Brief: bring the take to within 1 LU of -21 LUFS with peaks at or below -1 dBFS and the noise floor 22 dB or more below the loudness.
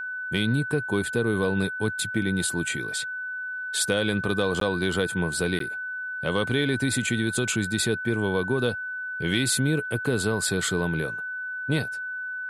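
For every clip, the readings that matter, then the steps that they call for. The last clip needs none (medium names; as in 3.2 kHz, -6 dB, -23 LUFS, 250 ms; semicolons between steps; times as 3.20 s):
dropouts 2; longest dropout 13 ms; steady tone 1.5 kHz; tone level -30 dBFS; loudness -26.0 LUFS; peak level -10.5 dBFS; loudness target -21.0 LUFS
-> interpolate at 4.60/5.59 s, 13 ms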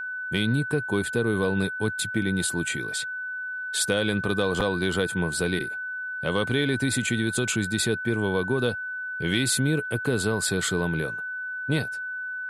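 dropouts 0; steady tone 1.5 kHz; tone level -30 dBFS
-> band-stop 1.5 kHz, Q 30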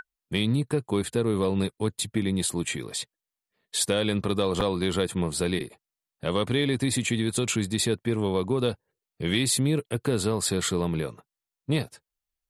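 steady tone not found; loudness -27.0 LUFS; peak level -11.0 dBFS; loudness target -21.0 LUFS
-> trim +6 dB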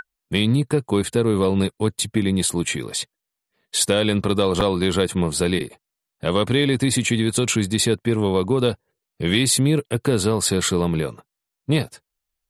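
loudness -21.0 LUFS; peak level -5.0 dBFS; noise floor -84 dBFS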